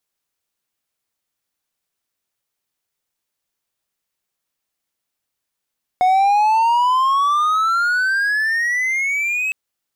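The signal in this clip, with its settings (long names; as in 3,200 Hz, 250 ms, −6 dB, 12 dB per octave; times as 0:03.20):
pitch glide with a swell triangle, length 3.51 s, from 728 Hz, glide +22 semitones, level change −7 dB, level −9 dB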